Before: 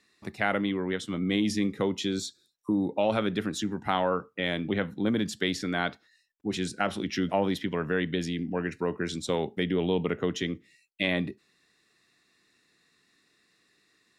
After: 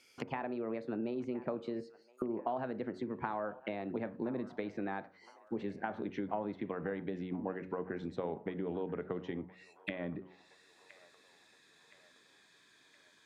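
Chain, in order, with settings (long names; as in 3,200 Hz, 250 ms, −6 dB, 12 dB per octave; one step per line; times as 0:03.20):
gliding playback speed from 124% → 90%
downward compressor 12 to 1, threshold −32 dBFS, peak gain reduction 12 dB
hum removal 92.35 Hz, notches 6
convolution reverb RT60 0.35 s, pre-delay 27 ms, DRR 17.5 dB
treble cut that deepens with the level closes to 1,100 Hz, closed at −37.5 dBFS
low-shelf EQ 420 Hz −6 dB
delay with a band-pass on its return 1,018 ms, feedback 53%, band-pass 1,300 Hz, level −17 dB
level +3 dB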